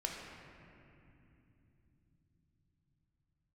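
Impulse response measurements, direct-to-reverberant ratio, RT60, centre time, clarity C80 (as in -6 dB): -1.5 dB, 2.9 s, 107 ms, 2.5 dB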